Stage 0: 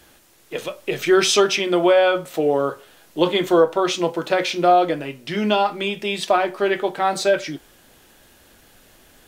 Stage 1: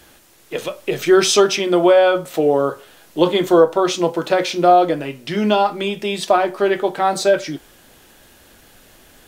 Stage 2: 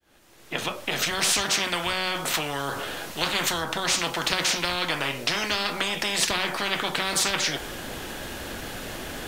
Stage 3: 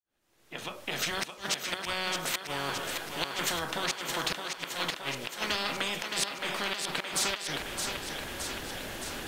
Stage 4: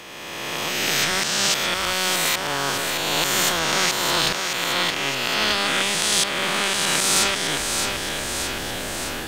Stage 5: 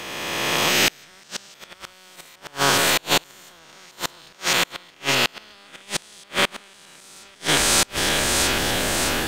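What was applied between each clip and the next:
dynamic bell 2.4 kHz, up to -5 dB, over -34 dBFS, Q 1; trim +3.5 dB
fade-in on the opening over 1.90 s; treble shelf 6.4 kHz -8.5 dB; spectrum-flattening compressor 10:1; trim -3.5 dB
fade-in on the opening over 1.04 s; inverted gate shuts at -11 dBFS, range -32 dB; thinning echo 618 ms, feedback 66%, high-pass 210 Hz, level -5.5 dB; trim -5.5 dB
reverse spectral sustain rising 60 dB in 2.31 s; trim +6 dB
inverted gate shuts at -11 dBFS, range -32 dB; trim +6 dB

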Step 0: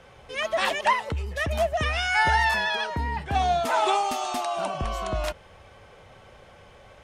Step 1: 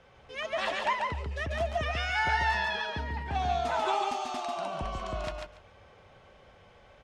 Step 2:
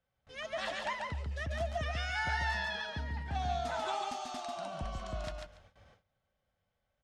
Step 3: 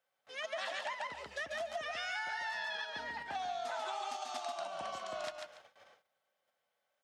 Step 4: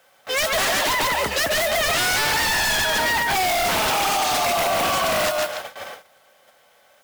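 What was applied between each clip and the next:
low-pass 6.2 kHz 12 dB/octave; feedback delay 142 ms, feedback 17%, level -3.5 dB; trim -7.5 dB
gate with hold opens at -45 dBFS; fifteen-band graphic EQ 400 Hz -10 dB, 1 kHz -7 dB, 2.5 kHz -6 dB; trim -2 dB
in parallel at -2 dB: level held to a coarse grid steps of 20 dB; on the sum: high-pass 490 Hz 12 dB/octave; compression, threshold -38 dBFS, peak gain reduction 9.5 dB; trim +1.5 dB
in parallel at +1 dB: peak limiter -33 dBFS, peak gain reduction 7.5 dB; on the sum: modulation noise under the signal 13 dB; sine folder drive 12 dB, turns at -22 dBFS; trim +4.5 dB

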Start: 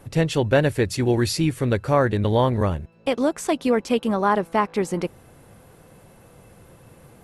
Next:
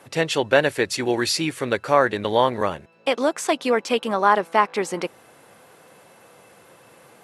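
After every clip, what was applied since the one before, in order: frequency weighting A; trim +4 dB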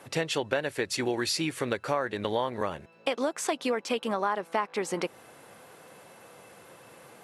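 compression 4:1, threshold -25 dBFS, peak gain reduction 12.5 dB; trim -1 dB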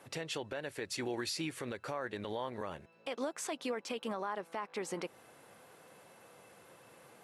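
peak limiter -20.5 dBFS, peak gain reduction 10 dB; trim -7 dB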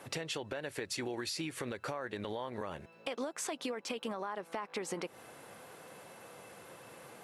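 compression, threshold -41 dBFS, peak gain reduction 8.5 dB; trim +6 dB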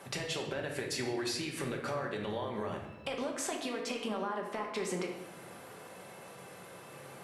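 simulated room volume 430 m³, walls mixed, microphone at 1.2 m

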